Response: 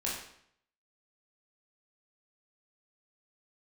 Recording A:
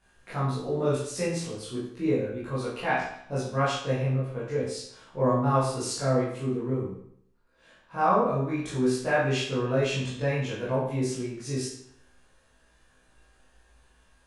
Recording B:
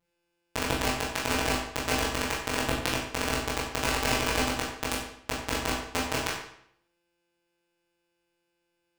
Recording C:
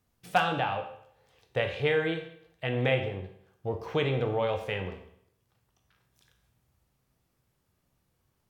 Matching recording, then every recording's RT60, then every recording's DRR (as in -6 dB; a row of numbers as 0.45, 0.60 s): B; 0.65, 0.65, 0.65 s; -10.5, -5.5, 4.0 dB